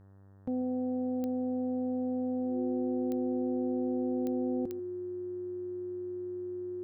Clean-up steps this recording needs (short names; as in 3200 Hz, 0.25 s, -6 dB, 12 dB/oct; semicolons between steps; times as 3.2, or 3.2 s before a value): de-click; de-hum 97.8 Hz, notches 19; notch 360 Hz, Q 30; inverse comb 0.14 s -18.5 dB